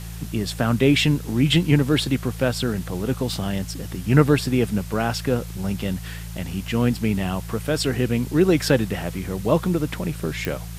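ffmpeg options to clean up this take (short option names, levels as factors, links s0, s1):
-af "adeclick=t=4,bandreject=f=56.1:t=h:w=4,bandreject=f=112.2:t=h:w=4,bandreject=f=168.3:t=h:w=4,afwtdn=0.0071"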